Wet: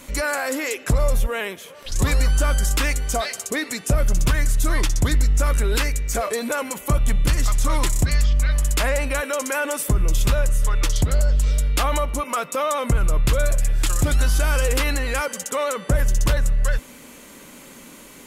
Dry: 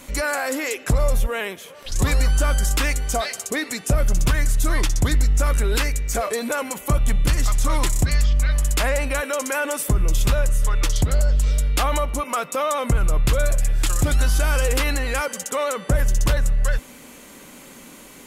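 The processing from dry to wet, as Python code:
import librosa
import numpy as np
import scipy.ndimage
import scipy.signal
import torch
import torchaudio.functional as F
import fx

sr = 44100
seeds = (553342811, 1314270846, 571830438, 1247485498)

y = fx.notch(x, sr, hz=760.0, q=18.0)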